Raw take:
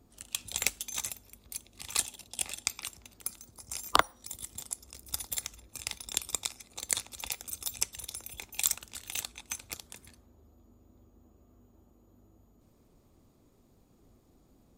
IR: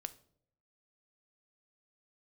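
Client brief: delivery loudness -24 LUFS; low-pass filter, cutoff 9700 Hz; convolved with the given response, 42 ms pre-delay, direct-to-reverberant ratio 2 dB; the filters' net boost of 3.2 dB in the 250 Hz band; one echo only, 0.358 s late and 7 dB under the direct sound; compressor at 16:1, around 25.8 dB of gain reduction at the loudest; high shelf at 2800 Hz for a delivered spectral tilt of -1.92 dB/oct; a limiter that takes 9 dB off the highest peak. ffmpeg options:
-filter_complex "[0:a]lowpass=9.7k,equalizer=f=250:t=o:g=4,highshelf=f=2.8k:g=8.5,acompressor=threshold=-44dB:ratio=16,alimiter=level_in=7.5dB:limit=-24dB:level=0:latency=1,volume=-7.5dB,aecho=1:1:358:0.447,asplit=2[a][b];[1:a]atrim=start_sample=2205,adelay=42[c];[b][c]afir=irnorm=-1:irlink=0,volume=1dB[d];[a][d]amix=inputs=2:normalize=0,volume=24.5dB"

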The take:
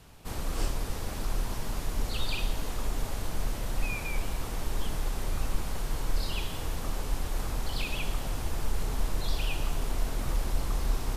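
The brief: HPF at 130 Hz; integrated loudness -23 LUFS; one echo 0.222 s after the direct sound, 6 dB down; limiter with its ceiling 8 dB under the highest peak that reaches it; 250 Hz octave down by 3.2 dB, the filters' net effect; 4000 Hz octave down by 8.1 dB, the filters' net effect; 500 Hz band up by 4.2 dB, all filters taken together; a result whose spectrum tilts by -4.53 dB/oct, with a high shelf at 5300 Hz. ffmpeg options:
-af "highpass=130,equalizer=f=250:t=o:g=-6,equalizer=f=500:t=o:g=7,equalizer=f=4k:t=o:g=-7.5,highshelf=f=5.3k:g=-8,alimiter=level_in=10dB:limit=-24dB:level=0:latency=1,volume=-10dB,aecho=1:1:222:0.501,volume=19dB"

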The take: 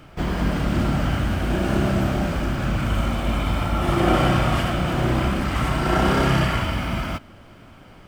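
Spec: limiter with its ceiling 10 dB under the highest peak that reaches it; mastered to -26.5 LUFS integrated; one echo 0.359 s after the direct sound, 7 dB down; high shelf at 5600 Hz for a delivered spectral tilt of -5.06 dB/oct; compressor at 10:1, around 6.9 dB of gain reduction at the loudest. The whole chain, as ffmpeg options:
-af "highshelf=f=5.6k:g=5.5,acompressor=threshold=-21dB:ratio=10,alimiter=limit=-23dB:level=0:latency=1,aecho=1:1:359:0.447,volume=5dB"

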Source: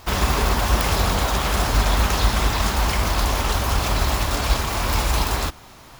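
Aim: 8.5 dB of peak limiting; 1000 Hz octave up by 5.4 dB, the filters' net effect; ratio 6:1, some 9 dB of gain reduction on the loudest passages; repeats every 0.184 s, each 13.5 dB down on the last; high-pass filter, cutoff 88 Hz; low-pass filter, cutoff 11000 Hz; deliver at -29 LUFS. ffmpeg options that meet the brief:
-af "highpass=88,lowpass=11k,equalizer=f=1k:t=o:g=6.5,acompressor=threshold=-26dB:ratio=6,alimiter=level_in=0.5dB:limit=-24dB:level=0:latency=1,volume=-0.5dB,aecho=1:1:184|368:0.211|0.0444,volume=4dB"

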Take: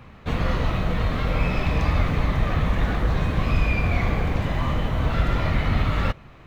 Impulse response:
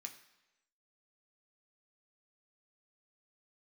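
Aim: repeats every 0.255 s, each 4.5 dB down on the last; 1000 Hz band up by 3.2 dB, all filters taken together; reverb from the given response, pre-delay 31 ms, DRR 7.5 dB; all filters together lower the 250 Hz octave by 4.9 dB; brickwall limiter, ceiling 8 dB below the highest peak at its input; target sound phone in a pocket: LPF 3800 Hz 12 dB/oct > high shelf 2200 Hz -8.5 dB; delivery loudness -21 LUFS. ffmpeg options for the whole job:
-filter_complex "[0:a]equalizer=f=250:t=o:g=-8,equalizer=f=1k:t=o:g=6.5,alimiter=limit=-16.5dB:level=0:latency=1,aecho=1:1:255|510|765|1020|1275|1530|1785|2040|2295:0.596|0.357|0.214|0.129|0.0772|0.0463|0.0278|0.0167|0.01,asplit=2[a][b];[1:a]atrim=start_sample=2205,adelay=31[c];[b][c]afir=irnorm=-1:irlink=0,volume=-3dB[d];[a][d]amix=inputs=2:normalize=0,lowpass=3.8k,highshelf=f=2.2k:g=-8.5,volume=5dB"

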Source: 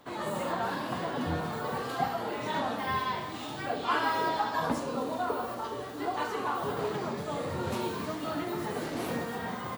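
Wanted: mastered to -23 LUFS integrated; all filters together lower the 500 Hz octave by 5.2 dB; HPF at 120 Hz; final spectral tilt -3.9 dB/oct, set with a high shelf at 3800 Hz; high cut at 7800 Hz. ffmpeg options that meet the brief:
-af "highpass=120,lowpass=7.8k,equalizer=f=500:t=o:g=-7,highshelf=f=3.8k:g=7,volume=11dB"

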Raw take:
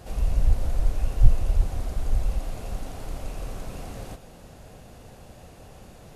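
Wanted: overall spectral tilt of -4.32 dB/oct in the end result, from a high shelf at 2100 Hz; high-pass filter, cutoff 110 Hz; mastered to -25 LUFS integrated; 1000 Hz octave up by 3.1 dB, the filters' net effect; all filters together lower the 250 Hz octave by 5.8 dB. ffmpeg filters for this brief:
-af "highpass=110,equalizer=f=250:t=o:g=-8.5,equalizer=f=1k:t=o:g=4,highshelf=f=2.1k:g=5.5,volume=14dB"

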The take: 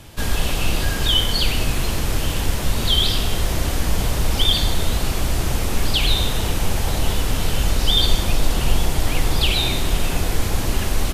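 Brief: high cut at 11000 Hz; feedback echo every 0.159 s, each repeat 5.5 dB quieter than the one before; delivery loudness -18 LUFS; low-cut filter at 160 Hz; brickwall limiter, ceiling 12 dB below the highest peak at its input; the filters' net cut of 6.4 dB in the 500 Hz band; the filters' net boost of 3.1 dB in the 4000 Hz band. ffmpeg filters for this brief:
-af "highpass=160,lowpass=11k,equalizer=f=500:t=o:g=-8.5,equalizer=f=4k:t=o:g=4,alimiter=limit=-15dB:level=0:latency=1,aecho=1:1:159|318|477|636|795|954|1113:0.531|0.281|0.149|0.079|0.0419|0.0222|0.0118,volume=4.5dB"

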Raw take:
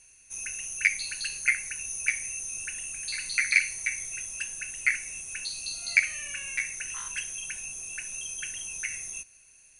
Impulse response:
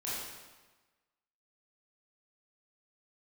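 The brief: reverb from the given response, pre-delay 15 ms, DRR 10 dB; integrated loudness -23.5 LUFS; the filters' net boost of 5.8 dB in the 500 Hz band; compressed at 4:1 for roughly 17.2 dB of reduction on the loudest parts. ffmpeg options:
-filter_complex "[0:a]equalizer=f=500:t=o:g=7.5,acompressor=threshold=-38dB:ratio=4,asplit=2[a][b];[1:a]atrim=start_sample=2205,adelay=15[c];[b][c]afir=irnorm=-1:irlink=0,volume=-13.5dB[d];[a][d]amix=inputs=2:normalize=0,volume=14.5dB"

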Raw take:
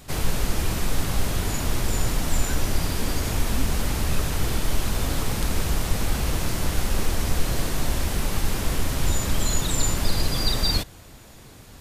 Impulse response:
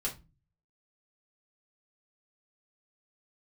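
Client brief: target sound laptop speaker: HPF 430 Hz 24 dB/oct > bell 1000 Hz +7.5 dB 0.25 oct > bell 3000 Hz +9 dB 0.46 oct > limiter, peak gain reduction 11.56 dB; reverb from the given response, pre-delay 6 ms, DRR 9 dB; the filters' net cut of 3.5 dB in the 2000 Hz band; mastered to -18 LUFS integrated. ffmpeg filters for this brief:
-filter_complex "[0:a]equalizer=f=2k:t=o:g=-8,asplit=2[a][b];[1:a]atrim=start_sample=2205,adelay=6[c];[b][c]afir=irnorm=-1:irlink=0,volume=-12dB[d];[a][d]amix=inputs=2:normalize=0,highpass=f=430:w=0.5412,highpass=f=430:w=1.3066,equalizer=f=1k:t=o:w=0.25:g=7.5,equalizer=f=3k:t=o:w=0.46:g=9,volume=15dB,alimiter=limit=-10.5dB:level=0:latency=1"

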